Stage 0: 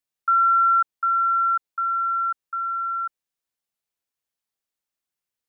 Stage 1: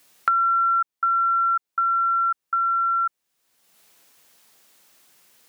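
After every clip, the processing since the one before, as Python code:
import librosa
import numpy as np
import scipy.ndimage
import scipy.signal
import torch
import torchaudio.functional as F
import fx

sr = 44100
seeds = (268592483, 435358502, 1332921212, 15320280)

y = fx.band_squash(x, sr, depth_pct=100)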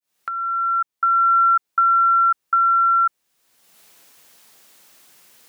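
y = fx.fade_in_head(x, sr, length_s=1.38)
y = y * 10.0 ** (5.5 / 20.0)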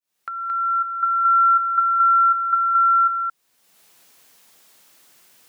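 y = x + 10.0 ** (-4.0 / 20.0) * np.pad(x, (int(222 * sr / 1000.0), 0))[:len(x)]
y = y * 10.0 ** (-3.5 / 20.0)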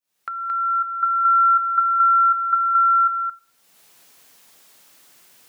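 y = fx.room_shoebox(x, sr, seeds[0], volume_m3=860.0, walls='furnished', distance_m=0.3)
y = y * 10.0 ** (1.5 / 20.0)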